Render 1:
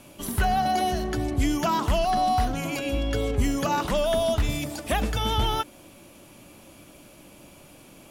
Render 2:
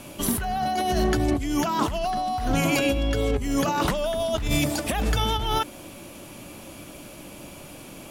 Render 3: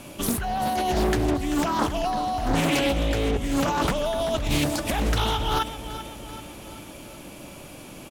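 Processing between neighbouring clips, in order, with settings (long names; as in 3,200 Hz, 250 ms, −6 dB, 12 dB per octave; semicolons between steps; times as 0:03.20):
compressor whose output falls as the input rises −28 dBFS, ratio −1; level +4 dB
repeating echo 387 ms, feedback 55%, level −12.5 dB; highs frequency-modulated by the lows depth 0.51 ms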